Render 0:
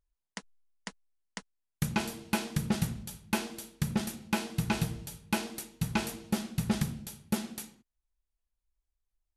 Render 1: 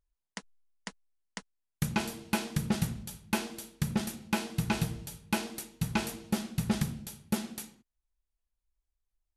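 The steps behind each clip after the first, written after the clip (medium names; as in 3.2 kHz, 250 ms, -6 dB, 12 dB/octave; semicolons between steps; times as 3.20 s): no audible change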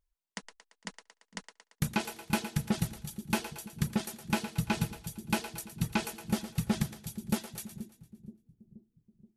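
reverb removal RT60 1.4 s; two-band feedback delay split 360 Hz, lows 477 ms, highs 114 ms, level -11 dB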